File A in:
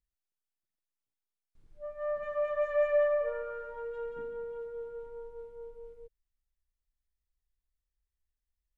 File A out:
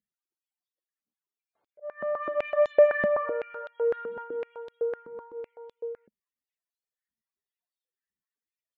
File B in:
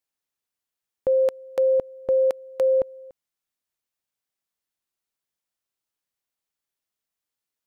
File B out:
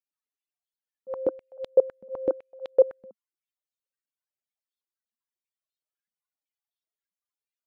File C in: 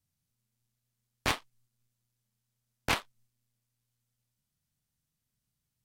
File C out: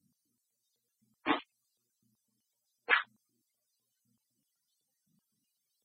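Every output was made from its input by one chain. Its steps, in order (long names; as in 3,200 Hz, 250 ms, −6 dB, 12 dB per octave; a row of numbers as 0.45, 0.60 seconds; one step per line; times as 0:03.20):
volume swells 159 ms
spectral peaks only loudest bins 64
high-pass on a step sequencer 7.9 Hz 210–3,600 Hz
normalise the peak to −9 dBFS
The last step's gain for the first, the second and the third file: +3.0, −4.5, +10.5 decibels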